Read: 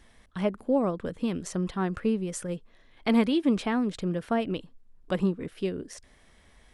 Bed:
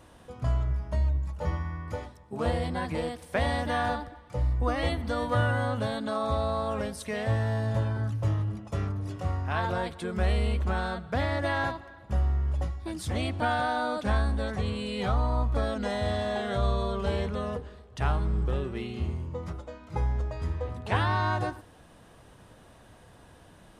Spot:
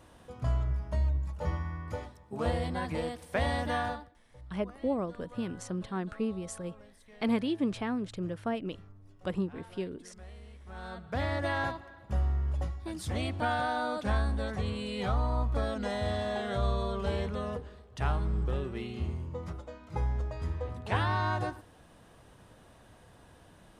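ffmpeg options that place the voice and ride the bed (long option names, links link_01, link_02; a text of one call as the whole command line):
ffmpeg -i stem1.wav -i stem2.wav -filter_complex "[0:a]adelay=4150,volume=-6dB[link_01];[1:a]volume=17.5dB,afade=type=out:start_time=3.74:duration=0.42:silence=0.0944061,afade=type=in:start_time=10.66:duration=0.61:silence=0.1[link_02];[link_01][link_02]amix=inputs=2:normalize=0" out.wav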